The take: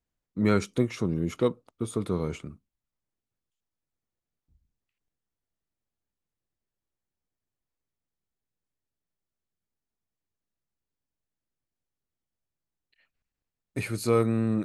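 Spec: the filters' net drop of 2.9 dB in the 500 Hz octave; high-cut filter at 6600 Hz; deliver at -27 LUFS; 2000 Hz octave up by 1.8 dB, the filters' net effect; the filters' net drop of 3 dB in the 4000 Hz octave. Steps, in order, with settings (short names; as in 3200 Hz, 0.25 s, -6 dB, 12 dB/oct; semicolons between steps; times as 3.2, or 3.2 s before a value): LPF 6600 Hz; bell 500 Hz -3.5 dB; bell 2000 Hz +3.5 dB; bell 4000 Hz -4 dB; gain +2.5 dB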